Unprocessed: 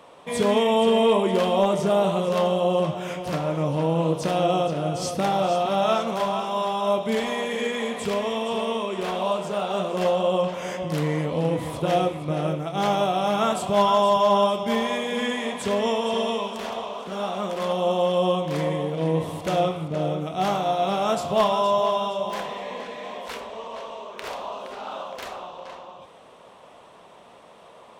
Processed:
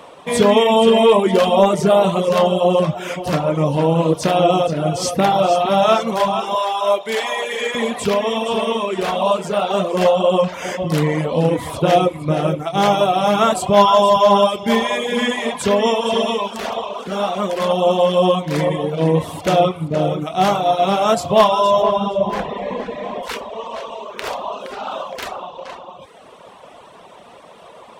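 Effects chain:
0:06.55–0:07.75: high-pass filter 510 Hz 12 dB per octave
reverb reduction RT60 0.87 s
0:21.82–0:23.23: spectral tilt −3 dB per octave
level +9 dB

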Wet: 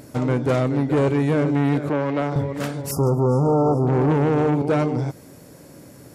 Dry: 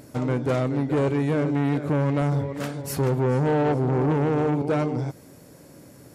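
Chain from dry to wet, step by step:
0:01.89–0:02.36: three-way crossover with the lows and the highs turned down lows −13 dB, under 230 Hz, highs −15 dB, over 5,900 Hz
0:02.91–0:03.87: linear-phase brick-wall band-stop 1,400–4,700 Hz
level +3.5 dB

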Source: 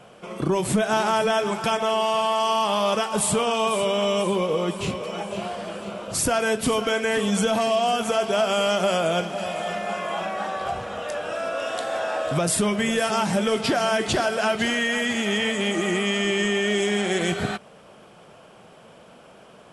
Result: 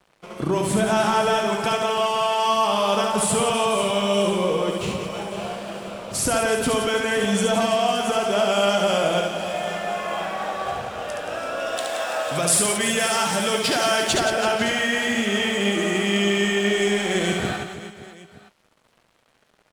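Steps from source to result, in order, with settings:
dead-zone distortion −44 dBFS
0:11.77–0:14.14: spectral tilt +2 dB per octave
reverse bouncing-ball delay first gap 70 ms, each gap 1.5×, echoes 5

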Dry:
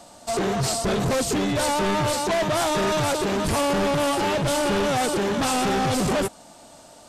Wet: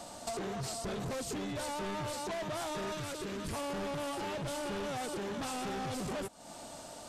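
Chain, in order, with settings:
downward compressor 10 to 1, threshold −37 dBFS, peak gain reduction 15.5 dB
0:02.94–0:03.53: parametric band 780 Hz −9.5 dB 0.64 octaves

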